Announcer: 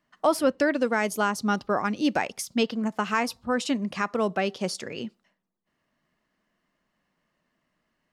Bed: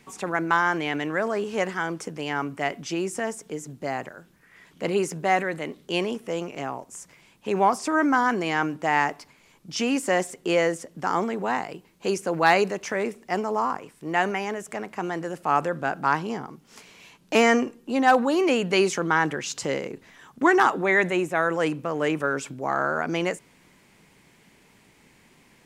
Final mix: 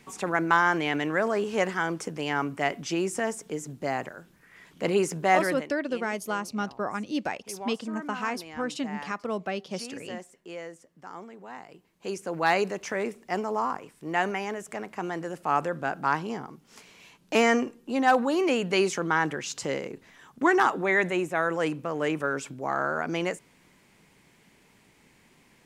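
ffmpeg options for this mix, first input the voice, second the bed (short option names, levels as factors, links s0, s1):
-filter_complex "[0:a]adelay=5100,volume=0.531[s0];[1:a]volume=5.31,afade=t=out:st=5.5:d=0.2:silence=0.133352,afade=t=in:st=11.49:d=1.32:silence=0.188365[s1];[s0][s1]amix=inputs=2:normalize=0"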